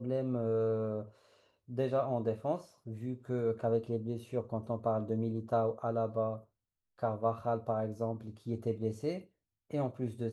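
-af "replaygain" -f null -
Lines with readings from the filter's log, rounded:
track_gain = +15.7 dB
track_peak = 0.083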